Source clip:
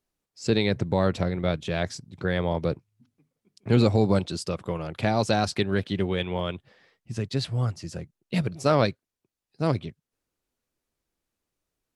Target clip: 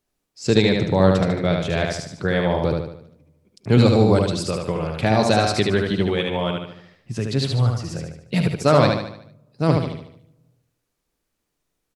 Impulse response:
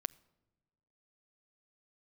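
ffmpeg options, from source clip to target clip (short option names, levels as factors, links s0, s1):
-filter_complex "[0:a]aecho=1:1:74|148|222|296|370|444:0.668|0.307|0.141|0.0651|0.0299|0.0138,asplit=2[s0][s1];[1:a]atrim=start_sample=2205[s2];[s1][s2]afir=irnorm=-1:irlink=0,volume=6.31[s3];[s0][s3]amix=inputs=2:normalize=0,volume=0.251"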